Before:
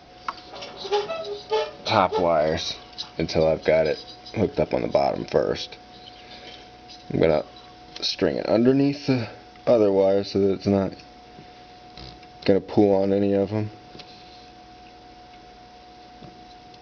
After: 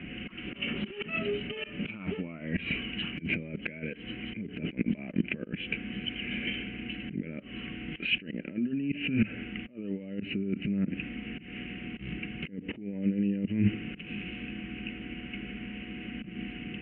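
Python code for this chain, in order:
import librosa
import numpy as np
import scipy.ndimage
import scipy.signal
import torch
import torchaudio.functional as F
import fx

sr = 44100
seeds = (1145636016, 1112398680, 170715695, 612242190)

y = scipy.signal.sosfilt(scipy.signal.cheby1(8, 1.0, 3000.0, 'lowpass', fs=sr, output='sos'), x)
y = fx.over_compress(y, sr, threshold_db=-31.0, ratio=-1.0)
y = fx.auto_swell(y, sr, attack_ms=173.0)
y = fx.curve_eq(y, sr, hz=(120.0, 210.0, 800.0, 2200.0), db=(0, 12, -22, 7))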